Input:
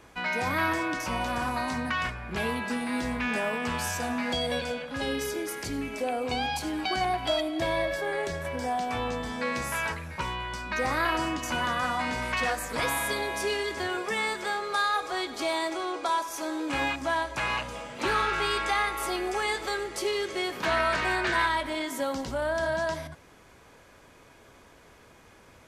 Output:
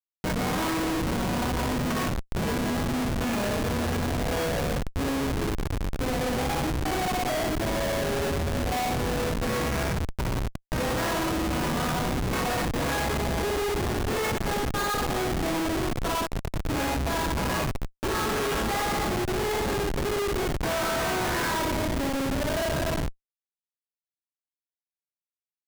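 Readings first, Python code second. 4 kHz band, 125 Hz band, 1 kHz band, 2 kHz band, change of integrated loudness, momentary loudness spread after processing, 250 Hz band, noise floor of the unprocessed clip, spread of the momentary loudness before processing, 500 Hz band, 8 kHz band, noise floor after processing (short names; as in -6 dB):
0.0 dB, +10.5 dB, -0.5 dB, -3.0 dB, +1.5 dB, 3 LU, +5.0 dB, -55 dBFS, 6 LU, +2.5 dB, +3.5 dB, under -85 dBFS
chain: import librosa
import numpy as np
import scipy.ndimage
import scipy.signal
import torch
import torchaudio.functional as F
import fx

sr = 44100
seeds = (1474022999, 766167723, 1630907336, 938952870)

y = fx.rev_spring(x, sr, rt60_s=1.1, pass_ms=(59,), chirp_ms=30, drr_db=-1.0)
y = fx.schmitt(y, sr, flips_db=-24.5)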